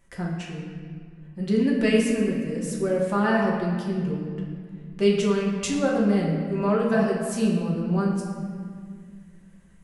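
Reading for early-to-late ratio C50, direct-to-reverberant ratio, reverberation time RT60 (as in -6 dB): 1.5 dB, -4.0 dB, 2.0 s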